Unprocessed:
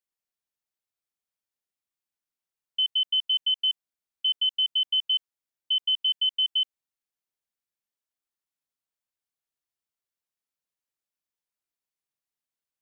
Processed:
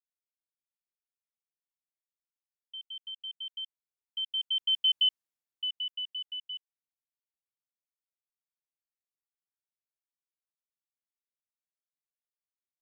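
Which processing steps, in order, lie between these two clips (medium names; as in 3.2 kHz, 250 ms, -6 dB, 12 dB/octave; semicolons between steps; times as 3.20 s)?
Doppler pass-by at 4.97 s, 6 m/s, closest 1.7 m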